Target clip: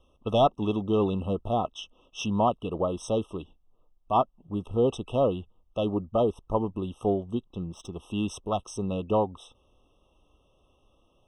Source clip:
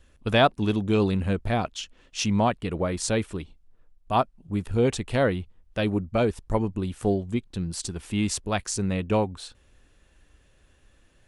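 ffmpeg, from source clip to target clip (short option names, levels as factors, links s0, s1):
-filter_complex "[0:a]asettb=1/sr,asplit=3[s0][s1][s2];[s0]atrim=end=7.534[s3];[s1]atrim=start=7.53:end=7.93,asetpts=PTS-STARTPTS,afade=t=in:d=0.004:c=qsin,afade=t=out:st=0.396:d=0.004:c=qsin,adynamicsmooth=sensitivity=5.5:basefreq=3500[s4];[s2]atrim=start=7.926[s5];[s3][s4]acrossfade=d=0.004:c1=hsin:c2=qsin[s6];[s6][s5]acrossfade=d=0.004:c1=qsin:c2=hsin,asplit=2[s7][s8];[s8]highpass=f=720:p=1,volume=3.98,asoftclip=type=tanh:threshold=0.473[s9];[s7][s9]amix=inputs=2:normalize=0,lowpass=f=1200:p=1,volume=0.501,afftfilt=real='re*eq(mod(floor(b*sr/1024/1300),2),0)':imag='im*eq(mod(floor(b*sr/1024/1300),2),0)':win_size=1024:overlap=0.75,volume=0.794"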